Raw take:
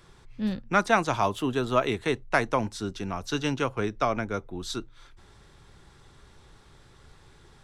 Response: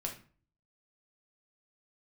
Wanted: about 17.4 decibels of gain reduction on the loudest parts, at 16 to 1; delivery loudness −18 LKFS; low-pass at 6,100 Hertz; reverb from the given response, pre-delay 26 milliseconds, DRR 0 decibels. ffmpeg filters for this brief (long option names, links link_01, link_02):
-filter_complex "[0:a]lowpass=6100,acompressor=threshold=-34dB:ratio=16,asplit=2[link_01][link_02];[1:a]atrim=start_sample=2205,adelay=26[link_03];[link_02][link_03]afir=irnorm=-1:irlink=0,volume=-0.5dB[link_04];[link_01][link_04]amix=inputs=2:normalize=0,volume=18.5dB"